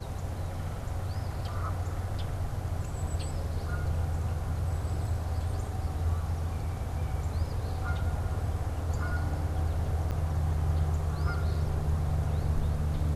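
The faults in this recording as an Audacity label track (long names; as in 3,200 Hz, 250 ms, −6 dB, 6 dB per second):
10.110000	10.120000	drop-out 7.5 ms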